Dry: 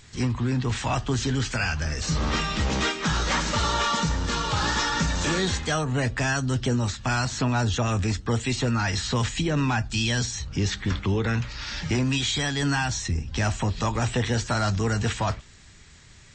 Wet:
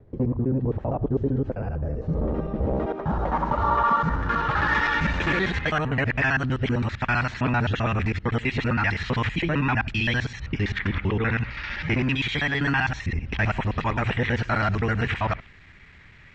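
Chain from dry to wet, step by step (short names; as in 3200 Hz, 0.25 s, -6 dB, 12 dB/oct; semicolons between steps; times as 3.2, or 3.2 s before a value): local time reversal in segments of 65 ms; low-pass sweep 520 Hz -> 2200 Hz, 2.51–4.94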